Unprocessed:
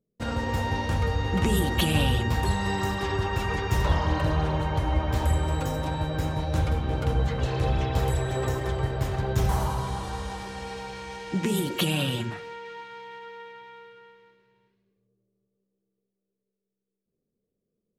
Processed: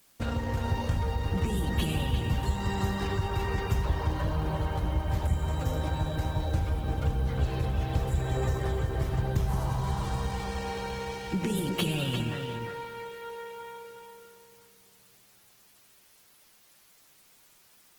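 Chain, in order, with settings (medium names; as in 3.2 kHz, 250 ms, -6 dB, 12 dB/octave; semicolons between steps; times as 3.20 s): bass shelf 140 Hz +6 dB; de-hum 372 Hz, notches 14; compression 4:1, threshold -27 dBFS, peak gain reduction 12.5 dB; word length cut 10-bit, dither triangular; on a send: filtered feedback delay 352 ms, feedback 18%, low-pass 5 kHz, level -6.5 dB; on the sum: Opus 16 kbps 48 kHz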